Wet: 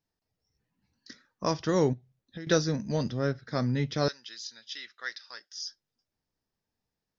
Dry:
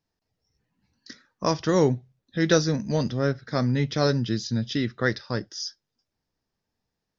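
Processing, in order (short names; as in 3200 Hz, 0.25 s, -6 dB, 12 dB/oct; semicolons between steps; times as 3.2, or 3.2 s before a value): 1.93–2.47 compressor 8:1, threshold -34 dBFS, peak gain reduction 16 dB; 4.08–5.67 Bessel high-pass 2000 Hz, order 2; gain -4.5 dB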